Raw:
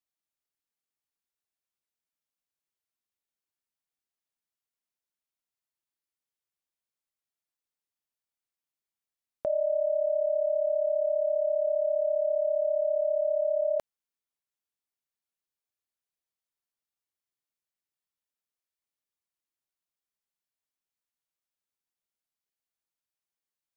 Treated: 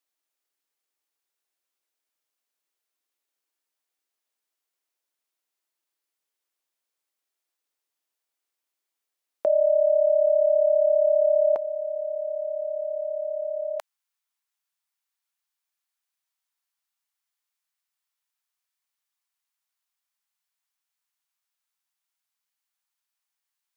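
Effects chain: high-pass 290 Hz 24 dB/octave, from 11.56 s 790 Hz; trim +7 dB

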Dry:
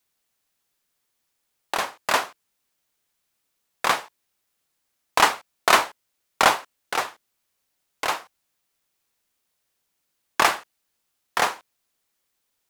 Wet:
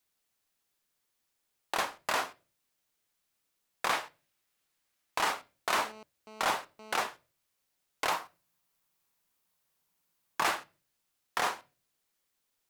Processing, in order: 8.11–10.44 s: fifteen-band graphic EQ 160 Hz +7 dB, 1 kHz +5 dB, 16 kHz +5 dB; peak limiter -13 dBFS, peak gain reduction 10.5 dB; 3.93–5.18 s: peaking EQ 2.2 kHz +3.5 dB 1.9 oct; reverberation RT60 0.35 s, pre-delay 5 ms, DRR 14 dB; 5.75–7.07 s: mobile phone buzz -45 dBFS; trim -4.5 dB

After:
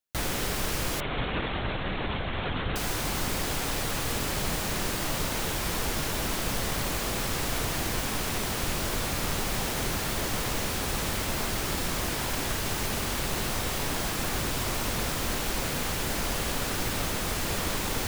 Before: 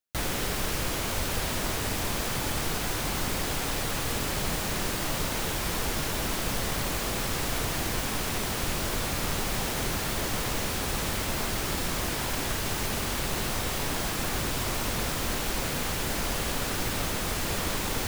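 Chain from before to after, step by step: 1.00–2.76 s: LPC vocoder at 8 kHz whisper

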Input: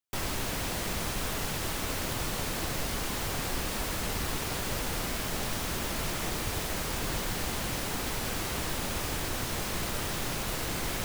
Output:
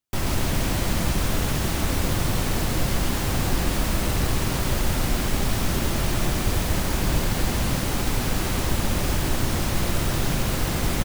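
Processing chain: bass shelf 380 Hz +8.5 dB; band-stop 450 Hz, Q 15; on a send: delay 136 ms -3.5 dB; on the sum: trim +3 dB

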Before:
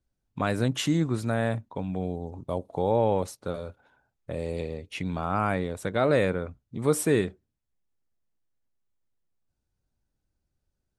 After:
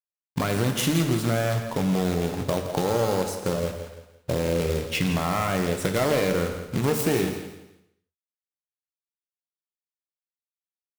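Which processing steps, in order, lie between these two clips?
self-modulated delay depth 0.21 ms; 3.41–4.61 s: low-pass 1.3 kHz 24 dB/octave; in parallel at +0.5 dB: peak limiter -22.5 dBFS, peak gain reduction 11.5 dB; on the sum: compression 4:1, threshold -26 dBFS, peak gain reduction 9.5 dB; companded quantiser 4-bit; on a send: feedback delay 168 ms, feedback 31%, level -11.5 dB; on the sum: gated-style reverb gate 330 ms falling, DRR 6 dB; trim +4 dB

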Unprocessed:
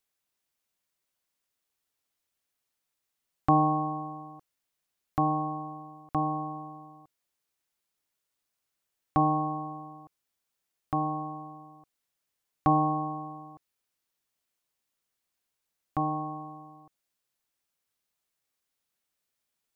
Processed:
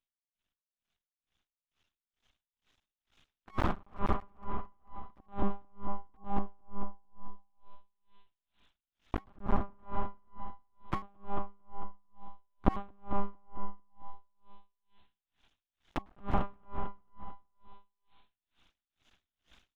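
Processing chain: recorder AGC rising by 7.7 dB/s; band-stop 600 Hz, Q 18; reverberation RT60 2.0 s, pre-delay 105 ms, DRR -2 dB; monotone LPC vocoder at 8 kHz 200 Hz; graphic EQ 125/500/1000/2000 Hz -8/-10/-6/-6 dB; compression 4:1, threshold -24 dBFS, peak gain reduction 15 dB; feedback delay 223 ms, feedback 54%, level -8.5 dB; half-wave rectifier; 9.36–9.79 s: treble shelf 2.1 kHz -10.5 dB; logarithmic tremolo 2.2 Hz, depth 37 dB; trim +5 dB

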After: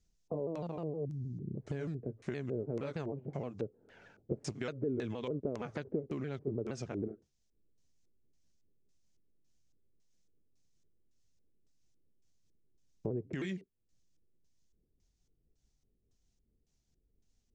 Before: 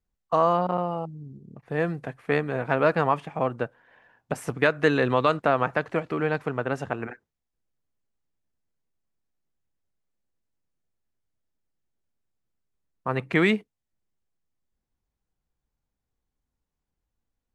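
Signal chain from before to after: sawtooth pitch modulation -3.5 st, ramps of 156 ms; peaking EQ 1.1 kHz -13 dB 1.9 oct; peak limiter -21.5 dBFS, peak gain reduction 9 dB; compression 6:1, threshold -45 dBFS, peak gain reduction 17.5 dB; LFO low-pass square 1.8 Hz 420–6300 Hz; trim +8 dB

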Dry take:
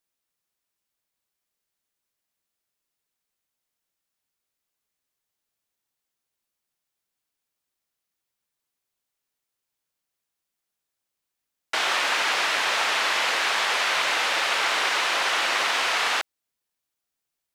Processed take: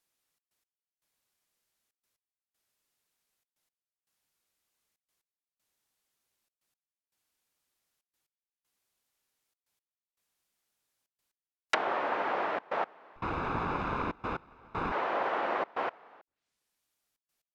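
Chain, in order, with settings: 13.16–14.92 s: comb filter that takes the minimum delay 0.79 ms; low-pass that closes with the level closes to 750 Hz, closed at -24.5 dBFS; trance gate "xxx.x...xxxx" 118 bpm -24 dB; trim +2.5 dB

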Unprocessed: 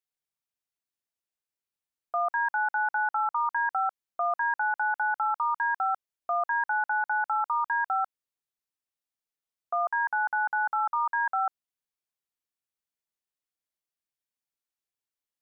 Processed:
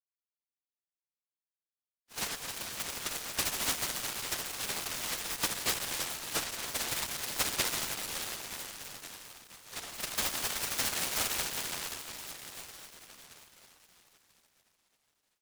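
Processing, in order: phase randomisation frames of 100 ms; gate -25 dBFS, range -14 dB; 7.65–9.79 s: compression, threshold -33 dBFS, peak gain reduction 10 dB; reverberation RT60 6.2 s, pre-delay 20 ms, DRR -1.5 dB; delay time shaken by noise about 2.2 kHz, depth 0.48 ms; trim -5.5 dB

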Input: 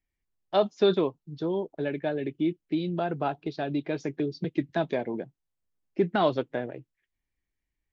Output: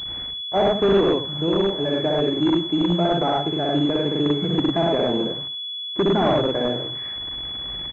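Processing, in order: one-bit delta coder 32 kbps, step -37.5 dBFS; high-pass 65 Hz 12 dB/octave; distance through air 52 m; loudspeakers at several distances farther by 21 m -1 dB, 35 m -1 dB, 60 m -12 dB; in parallel at -5.5 dB: integer overflow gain 17 dB; on the sum: class-D stage that switches slowly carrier 3.4 kHz; trim +1.5 dB

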